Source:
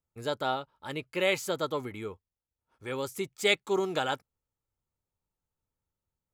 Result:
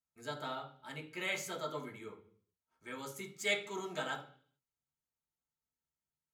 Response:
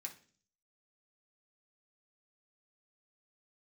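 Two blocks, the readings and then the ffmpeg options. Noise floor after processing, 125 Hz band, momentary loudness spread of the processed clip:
under -85 dBFS, -9.0 dB, 16 LU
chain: -filter_complex "[1:a]atrim=start_sample=2205,afade=t=out:st=0.43:d=0.01,atrim=end_sample=19404,asetrate=37044,aresample=44100[a];[0:a][a]afir=irnorm=-1:irlink=0,volume=-4.5dB"

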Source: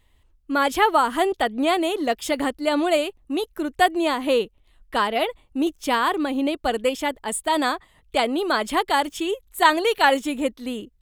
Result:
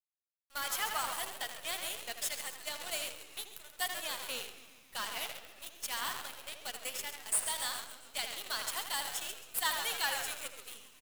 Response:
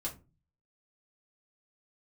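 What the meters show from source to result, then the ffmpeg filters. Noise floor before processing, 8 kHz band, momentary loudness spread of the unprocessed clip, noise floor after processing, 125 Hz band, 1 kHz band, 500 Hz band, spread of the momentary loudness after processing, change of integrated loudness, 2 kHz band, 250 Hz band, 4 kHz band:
-61 dBFS, -0.5 dB, 9 LU, -62 dBFS, n/a, -19.5 dB, -25.5 dB, 11 LU, -14.0 dB, -13.5 dB, -34.5 dB, -8.5 dB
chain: -filter_complex "[0:a]aderivative,asplit=2[a][b];[b]asplit=8[c][d][e][f][g][h][i][j];[c]adelay=136,afreqshift=-110,volume=-9.5dB[k];[d]adelay=272,afreqshift=-220,volume=-13.8dB[l];[e]adelay=408,afreqshift=-330,volume=-18.1dB[m];[f]adelay=544,afreqshift=-440,volume=-22.4dB[n];[g]adelay=680,afreqshift=-550,volume=-26.7dB[o];[h]adelay=816,afreqshift=-660,volume=-31dB[p];[i]adelay=952,afreqshift=-770,volume=-35.3dB[q];[j]adelay=1088,afreqshift=-880,volume=-39.6dB[r];[k][l][m][n][o][p][q][r]amix=inputs=8:normalize=0[s];[a][s]amix=inputs=2:normalize=0,aeval=exprs='(tanh(12.6*val(0)+0.55)-tanh(0.55))/12.6':c=same,highpass=f=450:w=0.5412,highpass=f=450:w=1.3066,asplit=2[t][u];[u]adelay=81,lowpass=f=3.7k:p=1,volume=-5.5dB,asplit=2[v][w];[w]adelay=81,lowpass=f=3.7k:p=1,volume=0.43,asplit=2[x][y];[y]adelay=81,lowpass=f=3.7k:p=1,volume=0.43,asplit=2[z][aa];[aa]adelay=81,lowpass=f=3.7k:p=1,volume=0.43,asplit=2[ab][ac];[ac]adelay=81,lowpass=f=3.7k:p=1,volume=0.43[ad];[v][x][z][ab][ad]amix=inputs=5:normalize=0[ae];[t][ae]amix=inputs=2:normalize=0,acrusher=bits=7:dc=4:mix=0:aa=0.000001"

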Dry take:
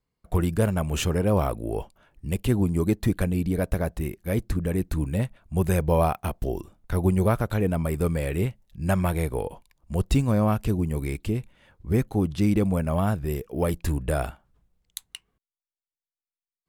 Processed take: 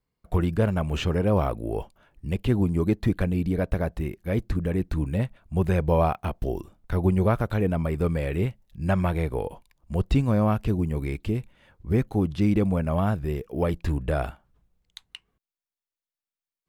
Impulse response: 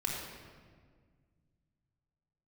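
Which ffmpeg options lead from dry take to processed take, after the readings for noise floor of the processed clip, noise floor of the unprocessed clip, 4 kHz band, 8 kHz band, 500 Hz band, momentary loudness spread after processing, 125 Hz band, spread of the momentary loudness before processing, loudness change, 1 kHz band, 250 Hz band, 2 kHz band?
under -85 dBFS, under -85 dBFS, -2.0 dB, under -10 dB, 0.0 dB, 9 LU, 0.0 dB, 10 LU, 0.0 dB, 0.0 dB, 0.0 dB, -0.5 dB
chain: -filter_complex "[0:a]acrossover=split=5000[a][b];[b]acompressor=threshold=-50dB:ratio=4:attack=1:release=60[c];[a][c]amix=inputs=2:normalize=0,equalizer=f=9.1k:t=o:w=1.4:g=-3"

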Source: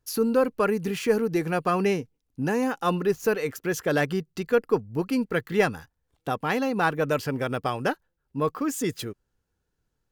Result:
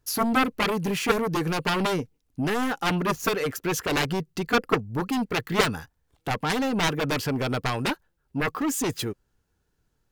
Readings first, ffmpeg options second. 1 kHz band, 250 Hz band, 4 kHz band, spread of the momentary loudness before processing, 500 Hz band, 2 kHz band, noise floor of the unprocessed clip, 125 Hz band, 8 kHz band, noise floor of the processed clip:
+1.5 dB, +0.5 dB, +8.5 dB, 7 LU, -3.5 dB, +2.0 dB, -78 dBFS, +2.0 dB, +5.0 dB, -73 dBFS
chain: -af "aeval=exprs='0.398*(cos(1*acos(clip(val(0)/0.398,-1,1)))-cos(1*PI/2))+0.2*(cos(7*acos(clip(val(0)/0.398,-1,1)))-cos(7*PI/2))':c=same,bandreject=f=510:w=16,volume=-3dB"

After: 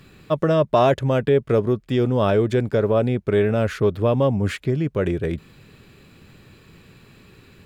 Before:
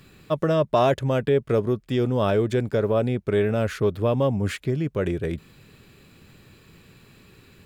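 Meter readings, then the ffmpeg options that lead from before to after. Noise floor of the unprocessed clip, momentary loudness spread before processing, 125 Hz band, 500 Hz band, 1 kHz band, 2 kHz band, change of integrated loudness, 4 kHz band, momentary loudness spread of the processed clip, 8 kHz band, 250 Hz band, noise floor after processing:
-53 dBFS, 6 LU, +3.0 dB, +3.0 dB, +3.0 dB, +2.5 dB, +3.0 dB, +1.5 dB, 6 LU, n/a, +3.0 dB, -51 dBFS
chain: -af "highshelf=f=5.9k:g=-5.5,volume=3dB"

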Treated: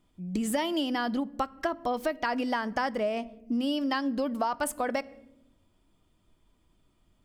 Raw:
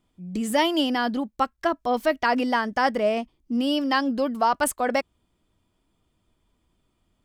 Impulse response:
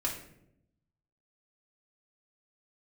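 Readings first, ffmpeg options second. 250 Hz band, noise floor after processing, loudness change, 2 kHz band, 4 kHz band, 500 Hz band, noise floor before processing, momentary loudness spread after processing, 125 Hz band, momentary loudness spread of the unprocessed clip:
-4.5 dB, -69 dBFS, -6.0 dB, -7.0 dB, -7.0 dB, -6.5 dB, -72 dBFS, 5 LU, n/a, 6 LU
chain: -filter_complex "[0:a]asplit=2[a][b];[1:a]atrim=start_sample=2205,lowshelf=f=250:g=11.5[c];[b][c]afir=irnorm=-1:irlink=0,volume=-21.5dB[d];[a][d]amix=inputs=2:normalize=0,acompressor=threshold=-26dB:ratio=6"

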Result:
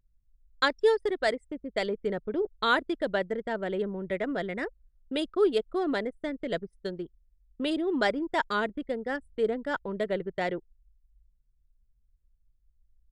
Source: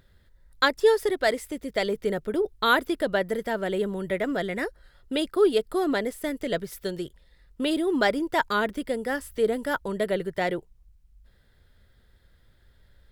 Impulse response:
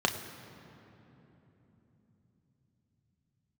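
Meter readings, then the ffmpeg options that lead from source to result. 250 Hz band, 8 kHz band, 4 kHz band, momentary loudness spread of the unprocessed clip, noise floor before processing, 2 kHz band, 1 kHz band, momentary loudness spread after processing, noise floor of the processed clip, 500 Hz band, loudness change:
-3.5 dB, under -10 dB, -4.0 dB, 9 LU, -60 dBFS, -3.5 dB, -3.5 dB, 9 LU, -69 dBFS, -3.5 dB, -3.5 dB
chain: -af "aresample=22050,aresample=44100,anlmdn=10,volume=-3.5dB" -ar 44100 -c:a aac -b:a 192k

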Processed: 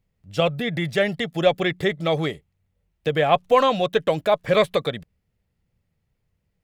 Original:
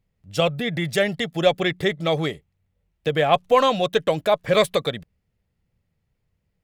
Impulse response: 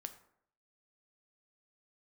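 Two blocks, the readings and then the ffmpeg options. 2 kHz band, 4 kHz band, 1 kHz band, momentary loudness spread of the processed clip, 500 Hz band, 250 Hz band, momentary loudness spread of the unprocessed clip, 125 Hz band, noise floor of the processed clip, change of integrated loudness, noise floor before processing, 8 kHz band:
-0.5 dB, -2.0 dB, 0.0 dB, 11 LU, 0.0 dB, 0.0 dB, 11 LU, 0.0 dB, -75 dBFS, 0.0 dB, -75 dBFS, n/a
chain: -filter_complex "[0:a]acrossover=split=3800[a][b];[b]acompressor=threshold=-40dB:ratio=4:attack=1:release=60[c];[a][c]amix=inputs=2:normalize=0"

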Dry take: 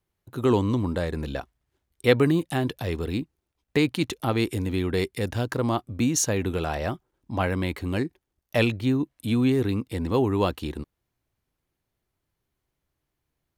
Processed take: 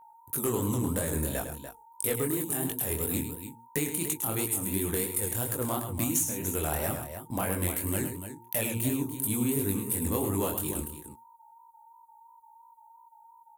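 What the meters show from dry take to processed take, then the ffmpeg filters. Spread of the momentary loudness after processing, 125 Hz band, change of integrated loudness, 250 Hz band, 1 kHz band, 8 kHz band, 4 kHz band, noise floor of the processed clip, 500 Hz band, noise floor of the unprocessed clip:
8 LU, -6.5 dB, -4.0 dB, -6.5 dB, -5.5 dB, +4.5 dB, -8.0 dB, -56 dBFS, -7.5 dB, -82 dBFS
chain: -filter_complex "[0:a]aexciter=amount=13.4:drive=9.2:freq=7.4k,bandreject=f=117.4:t=h:w=4,bandreject=f=234.8:t=h:w=4,bandreject=f=352.2:t=h:w=4,bandreject=f=469.6:t=h:w=4,agate=range=-18dB:threshold=-42dB:ratio=16:detection=peak,asplit=2[a][b];[b]aeval=exprs='0.299*(abs(mod(val(0)/0.299+3,4)-2)-1)':c=same,volume=-11dB[c];[a][c]amix=inputs=2:normalize=0,acompressor=threshold=-22dB:ratio=16,aeval=exprs='val(0)+0.00398*sin(2*PI*920*n/s)':c=same,aecho=1:1:105|291.5:0.355|0.282,volume=16.5dB,asoftclip=hard,volume=-16.5dB,flanger=delay=19:depth=7.4:speed=2.9"

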